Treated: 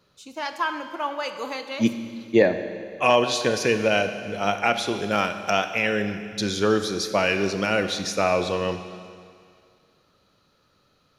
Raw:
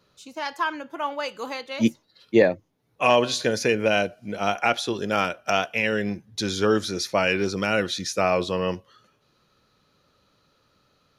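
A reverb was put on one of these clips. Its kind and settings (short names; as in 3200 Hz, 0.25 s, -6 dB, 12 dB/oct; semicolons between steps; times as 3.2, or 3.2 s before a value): Schroeder reverb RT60 2.2 s, combs from 30 ms, DRR 8.5 dB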